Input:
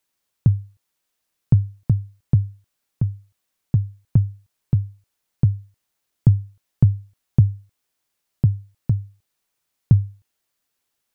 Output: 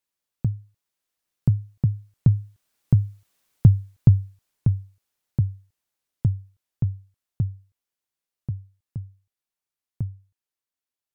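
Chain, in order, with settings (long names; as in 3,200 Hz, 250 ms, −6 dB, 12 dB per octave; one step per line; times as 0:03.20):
source passing by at 0:03.36, 11 m/s, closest 6.7 metres
level +6 dB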